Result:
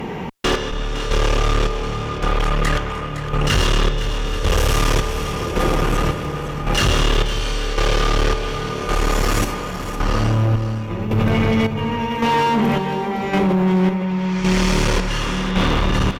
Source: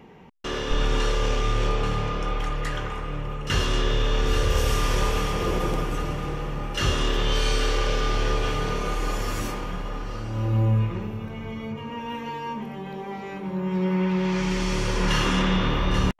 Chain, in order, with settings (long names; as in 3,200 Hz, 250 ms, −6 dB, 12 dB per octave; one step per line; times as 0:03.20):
fade-out on the ending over 0.57 s
in parallel at +2.5 dB: compressor whose output falls as the input rises −34 dBFS, ratio −1
on the sum: soft clipping −14 dBFS, distortion −21 dB
square-wave tremolo 0.9 Hz, depth 65%, duty 50%
asymmetric clip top −26 dBFS
on a send: single-tap delay 511 ms −11.5 dB
on the sum: level +8.5 dB